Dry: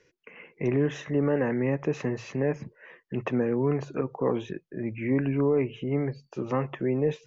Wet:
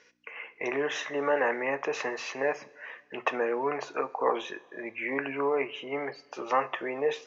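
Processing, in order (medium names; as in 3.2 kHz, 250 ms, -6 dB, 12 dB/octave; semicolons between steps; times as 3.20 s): hum 60 Hz, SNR 26 dB; Chebyshev band-pass 770–5700 Hz, order 2; two-slope reverb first 0.29 s, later 2 s, from -19 dB, DRR 11 dB; trim +7.5 dB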